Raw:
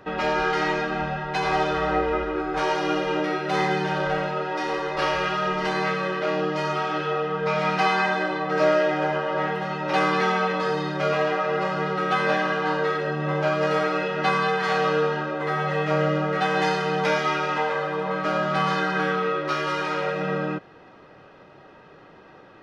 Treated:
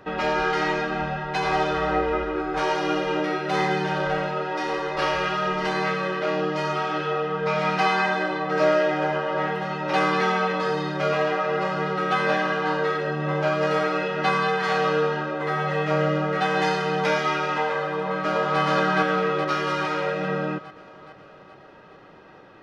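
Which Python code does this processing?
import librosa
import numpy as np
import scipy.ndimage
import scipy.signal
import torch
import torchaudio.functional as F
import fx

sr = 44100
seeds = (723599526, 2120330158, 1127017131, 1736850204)

y = fx.echo_throw(x, sr, start_s=17.93, length_s=0.67, ms=420, feedback_pct=60, wet_db=-1.5)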